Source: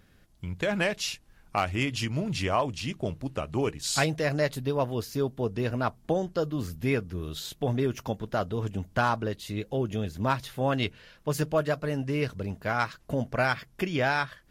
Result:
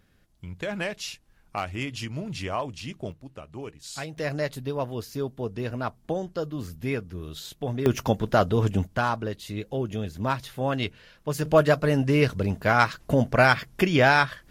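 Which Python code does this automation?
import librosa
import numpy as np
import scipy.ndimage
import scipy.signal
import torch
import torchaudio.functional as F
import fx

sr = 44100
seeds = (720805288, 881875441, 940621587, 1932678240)

y = fx.gain(x, sr, db=fx.steps((0.0, -3.5), (3.12, -10.0), (4.17, -2.0), (7.86, 8.0), (8.87, 0.0), (11.45, 7.5)))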